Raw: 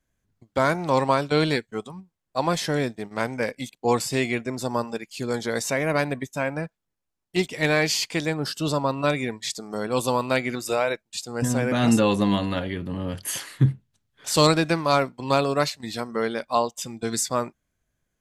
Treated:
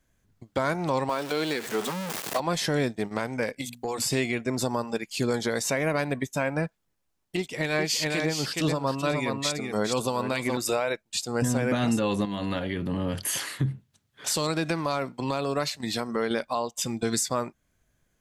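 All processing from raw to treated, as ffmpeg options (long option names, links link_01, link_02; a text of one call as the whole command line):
ffmpeg -i in.wav -filter_complex "[0:a]asettb=1/sr,asplit=3[link_01][link_02][link_03];[link_01]atrim=end=1.094[link_04];[link_02]atrim=start=1.09:end=2.4,asetpts=PTS-STARTPTS,afade=type=in:duration=0.004:curve=qsin,afade=type=out:start_time=1.306:duration=0.004:curve=qsin,aeval=exprs='val(0)+0.5*0.0422*sgn(val(0))':channel_layout=same,highpass=260[link_05];[link_03]atrim=start=2.396[link_06];[link_04][link_05]acrossfade=duration=0.004:curve1=hsin:curve2=qsin[link_07];[link_07][link_06]acrossfade=duration=0.004:curve1=qsin:curve2=hsin,asettb=1/sr,asplit=3[link_08][link_09][link_10];[link_08]atrim=end=3.614[link_11];[link_09]atrim=start=3.61:end=4.02,asetpts=PTS-STARTPTS,afade=type=in:duration=0.004:curve=qsin,afade=type=out:start_time=0.406:duration=0.004:curve=qsin,highshelf=frequency=7000:gain=9.5,bandreject=frequency=60:width_type=h:width=6,bandreject=frequency=120:width_type=h:width=6,bandreject=frequency=180:width_type=h:width=6,bandreject=frequency=240:width_type=h:width=6,acompressor=threshold=-34dB:ratio=6:attack=3.2:release=140:knee=1:detection=peak[link_12];[link_10]atrim=start=4.016[link_13];[link_11][link_12]acrossfade=duration=0.004:curve1=hsin:curve2=qsin[link_14];[link_14][link_13]acrossfade=duration=0.004:curve1=qsin:curve2=hsin,asettb=1/sr,asplit=3[link_15][link_16][link_17];[link_15]atrim=end=7.374[link_18];[link_16]atrim=start=7.37:end=10.57,asetpts=PTS-STARTPTS,afade=type=in:duration=0.004:curve=qsin,afade=type=out:start_time=3.196:duration=0.004:curve=qsin,aecho=1:1:417:0.473,atrim=end_sample=141120,acrossover=split=2000[link_19][link_20];[link_19]aeval=exprs='val(0)*(1-0.5/2+0.5/2*cos(2*PI*4.5*n/s))':channel_layout=same[link_21];[link_20]aeval=exprs='val(0)*(1-0.5/2-0.5/2*cos(2*PI*4.5*n/s))':channel_layout=same[link_22];[link_21][link_22]amix=inputs=2:normalize=0[link_23];[link_17]atrim=start=10.566[link_24];[link_18][link_23]acrossfade=duration=0.004:curve1=hsin:curve2=qsin[link_25];[link_25][link_24]acrossfade=duration=0.004:curve1=qsin:curve2=hsin,asettb=1/sr,asplit=3[link_26][link_27][link_28];[link_26]atrim=end=12.254[link_29];[link_27]atrim=start=12.25:end=16.31,asetpts=PTS-STARTPTS,afade=type=in:duration=0.004:curve=qsin,afade=type=out:start_time=4.056:duration=0.004:curve=qsin,highpass=85,acompressor=threshold=-33dB:ratio=2:attack=3.2:release=140:knee=1:detection=peak[link_30];[link_28]atrim=start=16.306[link_31];[link_29][link_30]acrossfade=duration=0.004:curve1=hsin:curve2=qsin[link_32];[link_32][link_31]acrossfade=duration=0.004:curve1=qsin:curve2=hsin,acompressor=threshold=-28dB:ratio=1.5,alimiter=limit=-22dB:level=0:latency=1:release=370,volume=6dB" out.wav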